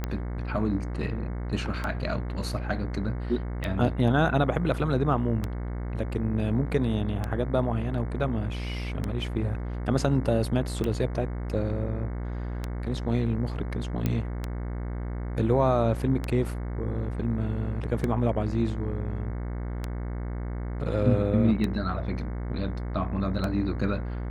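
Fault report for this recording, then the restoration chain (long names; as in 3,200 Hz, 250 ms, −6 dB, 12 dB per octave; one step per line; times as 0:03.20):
mains buzz 60 Hz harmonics 37 −32 dBFS
scratch tick 33 1/3 rpm −16 dBFS
0:14.06: click −14 dBFS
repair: click removal
hum removal 60 Hz, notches 37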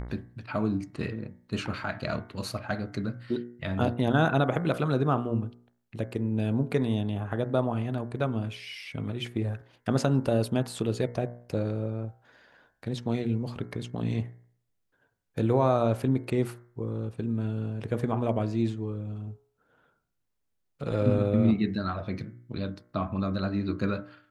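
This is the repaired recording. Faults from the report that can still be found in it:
none of them is left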